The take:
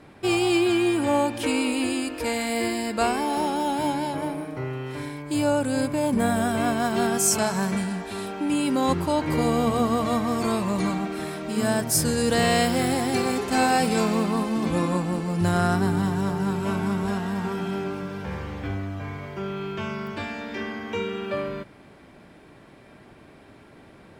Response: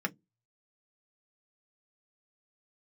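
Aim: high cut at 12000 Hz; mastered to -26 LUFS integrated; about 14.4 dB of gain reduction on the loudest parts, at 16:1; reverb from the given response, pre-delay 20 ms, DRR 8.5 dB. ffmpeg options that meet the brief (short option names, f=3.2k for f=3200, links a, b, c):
-filter_complex "[0:a]lowpass=12k,acompressor=threshold=-32dB:ratio=16,asplit=2[a][b];[1:a]atrim=start_sample=2205,adelay=20[c];[b][c]afir=irnorm=-1:irlink=0,volume=-14dB[d];[a][d]amix=inputs=2:normalize=0,volume=9.5dB"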